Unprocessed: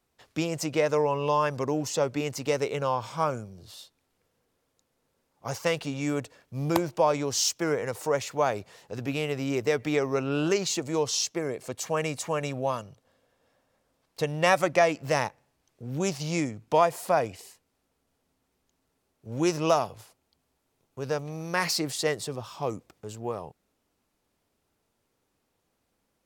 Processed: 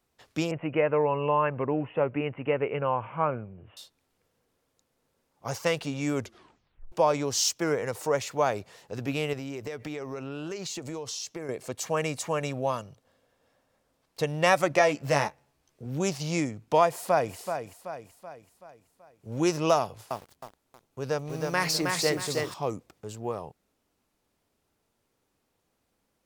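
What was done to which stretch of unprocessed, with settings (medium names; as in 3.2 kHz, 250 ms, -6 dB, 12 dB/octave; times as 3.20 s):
0.51–3.77 s: steep low-pass 2.9 kHz 96 dB/octave
6.14 s: tape stop 0.78 s
9.33–11.49 s: compression 8:1, threshold -32 dBFS
14.69–15.86 s: doubling 14 ms -6.5 dB
16.89–17.35 s: echo throw 380 ms, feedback 50%, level -8 dB
19.79–22.54 s: bit-crushed delay 316 ms, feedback 35%, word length 8-bit, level -3 dB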